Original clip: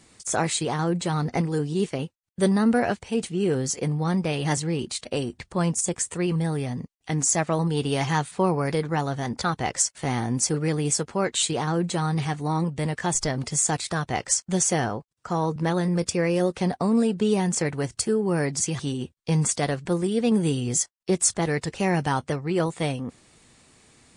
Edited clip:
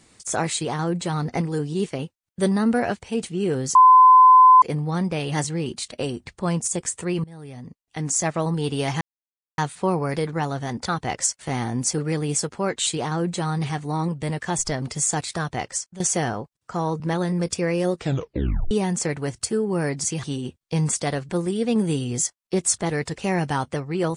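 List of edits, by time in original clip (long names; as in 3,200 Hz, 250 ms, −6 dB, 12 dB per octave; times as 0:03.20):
0:03.75: insert tone 1,020 Hz −7.5 dBFS 0.87 s
0:06.37–0:07.40: fade in, from −22 dB
0:08.14: splice in silence 0.57 s
0:14.09–0:14.56: fade out, to −16.5 dB
0:16.51: tape stop 0.76 s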